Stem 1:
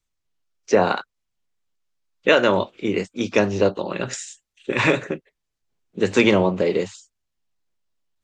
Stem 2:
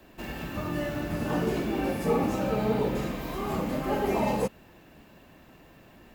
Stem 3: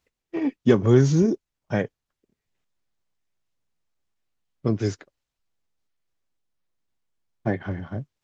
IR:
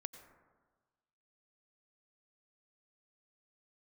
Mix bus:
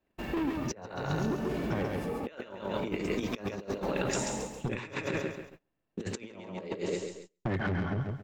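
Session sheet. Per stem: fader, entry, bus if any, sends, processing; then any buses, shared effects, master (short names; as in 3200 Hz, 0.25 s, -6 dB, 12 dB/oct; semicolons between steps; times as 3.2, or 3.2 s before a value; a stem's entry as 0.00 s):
-9.0 dB, 0.00 s, no bus, no send, echo send -4.5 dB, dry
-2.0 dB, 0.00 s, bus A, no send, echo send -15 dB, limiter -24 dBFS, peak gain reduction 9 dB; auto duck -7 dB, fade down 0.60 s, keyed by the first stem
+1.5 dB, 0.00 s, bus A, no send, echo send -10.5 dB, negative-ratio compressor -25 dBFS, ratio -0.5; soft clip -28 dBFS, distortion -7 dB
bus A: 0.0 dB, high shelf 4800 Hz -8 dB; compressor 6:1, threshold -33 dBFS, peak gain reduction 6.5 dB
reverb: off
echo: feedback echo 0.136 s, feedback 38%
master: gate -51 dBFS, range -27 dB; negative-ratio compressor -33 dBFS, ratio -0.5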